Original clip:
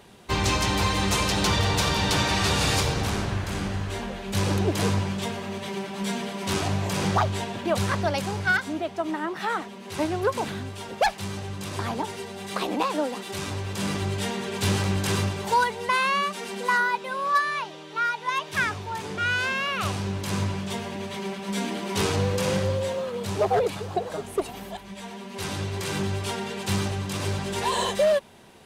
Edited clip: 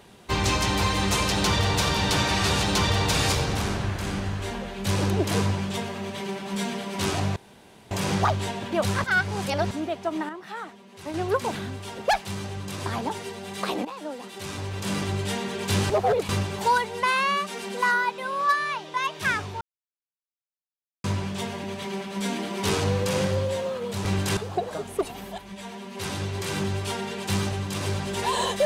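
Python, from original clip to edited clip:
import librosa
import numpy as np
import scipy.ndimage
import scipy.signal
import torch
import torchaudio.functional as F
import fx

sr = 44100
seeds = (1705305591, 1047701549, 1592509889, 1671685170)

y = fx.edit(x, sr, fx.duplicate(start_s=1.31, length_s=0.52, to_s=2.62),
    fx.insert_room_tone(at_s=6.84, length_s=0.55),
    fx.reverse_span(start_s=7.97, length_s=0.67),
    fx.clip_gain(start_s=9.22, length_s=0.85, db=-8.5),
    fx.fade_in_from(start_s=12.78, length_s=0.97, floor_db=-14.5),
    fx.swap(start_s=14.83, length_s=0.32, other_s=23.37, other_length_s=0.39),
    fx.cut(start_s=17.8, length_s=0.46),
    fx.silence(start_s=18.93, length_s=1.43), tone=tone)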